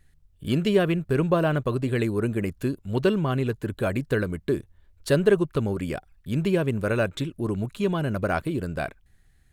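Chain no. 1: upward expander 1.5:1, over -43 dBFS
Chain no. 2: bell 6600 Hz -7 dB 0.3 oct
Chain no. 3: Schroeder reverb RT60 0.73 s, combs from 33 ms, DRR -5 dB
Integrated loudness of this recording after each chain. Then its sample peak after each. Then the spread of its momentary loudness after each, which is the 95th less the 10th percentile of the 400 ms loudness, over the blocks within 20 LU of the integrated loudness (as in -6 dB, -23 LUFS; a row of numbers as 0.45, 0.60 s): -29.0, -26.0, -19.5 LUFS; -8.5, -8.5, -3.0 dBFS; 11, 9, 9 LU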